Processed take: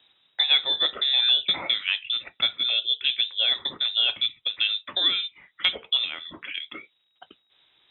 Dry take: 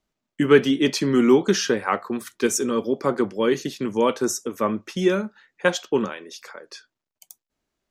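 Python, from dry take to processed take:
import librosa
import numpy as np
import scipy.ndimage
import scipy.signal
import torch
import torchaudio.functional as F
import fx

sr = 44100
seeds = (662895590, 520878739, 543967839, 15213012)

y = fx.freq_invert(x, sr, carrier_hz=3800)
y = scipy.signal.sosfilt(scipy.signal.butter(2, 78.0, 'highpass', fs=sr, output='sos'), y)
y = fx.band_squash(y, sr, depth_pct=70)
y = F.gain(torch.from_numpy(y), -3.5).numpy()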